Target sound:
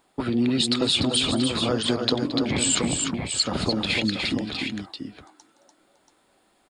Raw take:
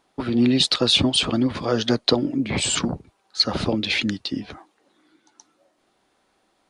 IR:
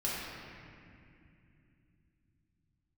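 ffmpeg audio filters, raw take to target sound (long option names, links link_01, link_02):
-filter_complex "[0:a]bandreject=frequency=6000:width=6,asplit=2[link_01][link_02];[link_02]aecho=0:1:220|293|683:0.133|0.501|0.355[link_03];[link_01][link_03]amix=inputs=2:normalize=0,acompressor=threshold=-24dB:ratio=2,aexciter=amount=2.2:drive=1.5:freq=7100,volume=1dB"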